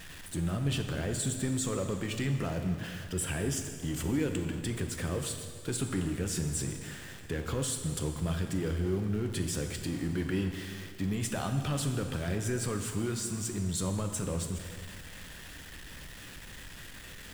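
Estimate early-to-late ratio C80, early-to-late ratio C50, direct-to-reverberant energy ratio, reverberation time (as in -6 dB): 8.0 dB, 6.5 dB, 5.0 dB, 2.0 s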